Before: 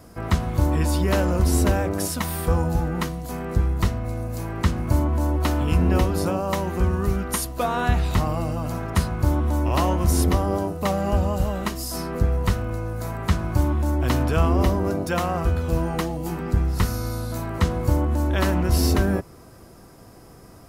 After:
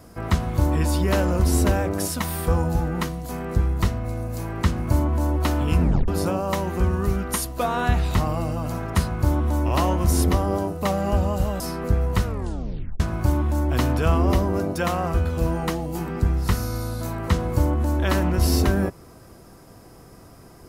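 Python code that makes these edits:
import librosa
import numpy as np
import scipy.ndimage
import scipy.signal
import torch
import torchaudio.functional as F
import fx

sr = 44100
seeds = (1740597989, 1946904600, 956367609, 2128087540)

y = fx.edit(x, sr, fx.tape_stop(start_s=5.82, length_s=0.26),
    fx.cut(start_s=11.6, length_s=0.31),
    fx.tape_stop(start_s=12.55, length_s=0.76), tone=tone)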